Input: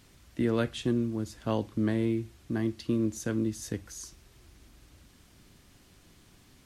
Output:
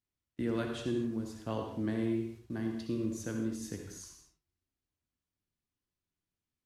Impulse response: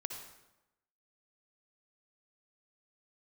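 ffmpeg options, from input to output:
-filter_complex "[0:a]agate=range=-29dB:threshold=-49dB:ratio=16:detection=peak,flanger=delay=9.9:depth=3.8:regen=76:speed=1.3:shape=triangular[link_01];[1:a]atrim=start_sample=2205,afade=type=out:start_time=0.3:duration=0.01,atrim=end_sample=13671[link_02];[link_01][link_02]afir=irnorm=-1:irlink=0"

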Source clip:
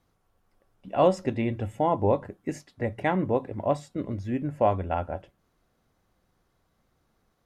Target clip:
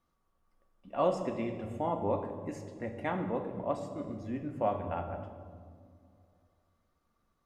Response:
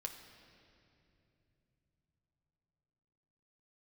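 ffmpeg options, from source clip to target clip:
-filter_complex "[0:a]equalizer=frequency=1200:width=6.6:gain=10[link_01];[1:a]atrim=start_sample=2205,asetrate=83790,aresample=44100[link_02];[link_01][link_02]afir=irnorm=-1:irlink=0"

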